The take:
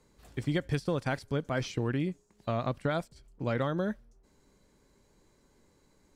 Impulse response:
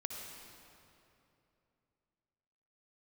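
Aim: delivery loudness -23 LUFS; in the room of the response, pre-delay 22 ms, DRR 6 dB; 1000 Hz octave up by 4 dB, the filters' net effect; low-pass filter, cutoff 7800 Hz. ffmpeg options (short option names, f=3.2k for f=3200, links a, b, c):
-filter_complex "[0:a]lowpass=7.8k,equalizer=f=1k:t=o:g=5.5,asplit=2[a][b];[1:a]atrim=start_sample=2205,adelay=22[c];[b][c]afir=irnorm=-1:irlink=0,volume=-5.5dB[d];[a][d]amix=inputs=2:normalize=0,volume=8dB"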